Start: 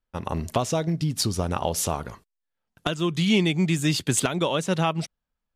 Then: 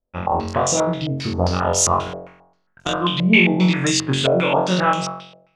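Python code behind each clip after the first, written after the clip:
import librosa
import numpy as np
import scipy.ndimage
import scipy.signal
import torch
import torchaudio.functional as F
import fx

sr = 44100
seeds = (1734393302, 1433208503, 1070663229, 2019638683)

y = fx.room_flutter(x, sr, wall_m=3.8, rt60_s=0.73)
y = fx.spec_box(y, sr, start_s=3.6, length_s=0.31, low_hz=410.0, high_hz=1500.0, gain_db=10)
y = fx.filter_held_lowpass(y, sr, hz=7.5, low_hz=580.0, high_hz=6800.0)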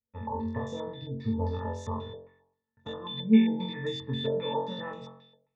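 y = fx.octave_resonator(x, sr, note='A', decay_s=0.14)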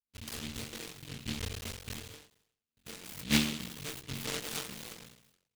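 y = fx.cycle_switch(x, sr, every=3, mode='muted')
y = fx.noise_mod_delay(y, sr, seeds[0], noise_hz=3000.0, depth_ms=0.44)
y = F.gain(torch.from_numpy(y), -6.5).numpy()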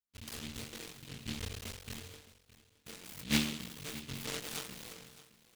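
y = x + 10.0 ** (-17.5 / 20.0) * np.pad(x, (int(616 * sr / 1000.0), 0))[:len(x)]
y = F.gain(torch.from_numpy(y), -3.0).numpy()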